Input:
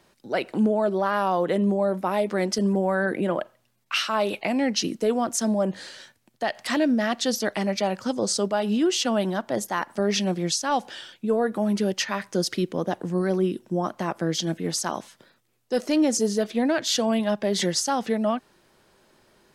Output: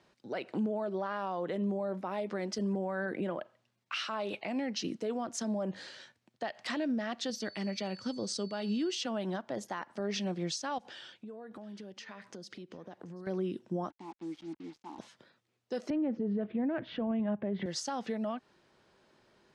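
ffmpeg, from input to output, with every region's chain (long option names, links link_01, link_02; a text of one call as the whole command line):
ffmpeg -i in.wav -filter_complex "[0:a]asettb=1/sr,asplit=3[link_01][link_02][link_03];[link_01]atrim=end=7.304[link_04];[link_02]atrim=start=7.3:end=9.03,asetpts=PTS-STARTPTS,afade=type=in:duration=0.004:curve=qsin,afade=type=out:start_time=1.726:duration=0.004:curve=qsin,equalizer=frequency=810:width_type=o:width=1.8:gain=-8,bandreject=frequency=6900:width=21,aeval=exprs='val(0)+0.00794*sin(2*PI*4500*n/s)':channel_layout=same[link_05];[link_03]atrim=start=9.026[link_06];[link_04][link_05]acrossfade=duration=0.004:curve1=hsin:curve2=qsin[link_07];[link_07][link_06]acrossfade=duration=0.004:curve1=qsin:curve2=hsin,asettb=1/sr,asplit=3[link_08][link_09][link_10];[link_08]atrim=end=10.784[link_11];[link_09]atrim=start=10.78:end=13.27,asetpts=PTS-STARTPTS,afade=type=in:duration=0.004:curve=qsin,afade=type=out:start_time=2.486:duration=0.004:curve=qsin,acompressor=threshold=-37dB:ratio=8:attack=3.2:release=140:knee=1:detection=peak,aecho=1:1:732:0.0794,atrim=end_sample=109809[link_12];[link_10]atrim=start=13.266[link_13];[link_11][link_12]acrossfade=duration=0.004:curve1=hsin:curve2=qsin[link_14];[link_14][link_13]acrossfade=duration=0.004:curve1=qsin:curve2=hsin,asettb=1/sr,asplit=3[link_15][link_16][link_17];[link_15]atrim=end=13.904[link_18];[link_16]atrim=start=13.9:end=14.99,asetpts=PTS-STARTPTS,afade=type=in:duration=0.004:curve=qsin,afade=type=out:start_time=1.086:duration=0.004:curve=qsin,asplit=3[link_19][link_20][link_21];[link_19]bandpass=frequency=300:width_type=q:width=8,volume=0dB[link_22];[link_20]bandpass=frequency=870:width_type=q:width=8,volume=-6dB[link_23];[link_21]bandpass=frequency=2240:width_type=q:width=8,volume=-9dB[link_24];[link_22][link_23][link_24]amix=inputs=3:normalize=0,acrusher=bits=7:mix=0:aa=0.5[link_25];[link_17]atrim=start=14.986[link_26];[link_18][link_25]acrossfade=duration=0.004:curve1=hsin:curve2=qsin[link_27];[link_27][link_26]acrossfade=duration=0.004:curve1=qsin:curve2=hsin,asettb=1/sr,asplit=3[link_28][link_29][link_30];[link_28]atrim=end=15.904[link_31];[link_29]atrim=start=15.9:end=17.66,asetpts=PTS-STARTPTS,afade=type=in:duration=0.004:curve=qsin,afade=type=out:start_time=1.756:duration=0.004:curve=qsin,lowpass=frequency=2800:width=0.5412,lowpass=frequency=2800:width=1.3066,aemphasis=mode=reproduction:type=riaa[link_32];[link_30]atrim=start=17.656[link_33];[link_31][link_32]acrossfade=duration=0.004:curve1=hsin:curve2=qsin[link_34];[link_34][link_33]acrossfade=duration=0.004:curve1=qsin:curve2=hsin,lowpass=5700,alimiter=limit=-20dB:level=0:latency=1:release=168,highpass=48,volume=-6dB" out.wav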